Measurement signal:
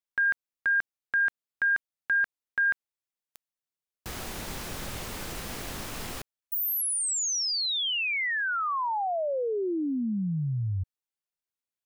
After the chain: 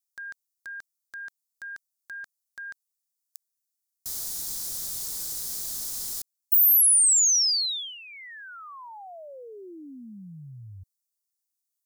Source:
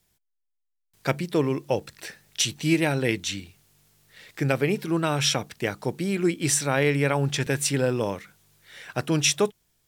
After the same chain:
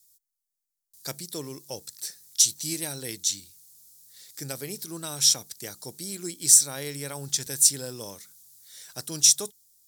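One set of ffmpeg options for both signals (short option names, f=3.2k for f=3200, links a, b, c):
-af "aexciter=amount=11.4:drive=5.8:freq=4k,volume=-14dB"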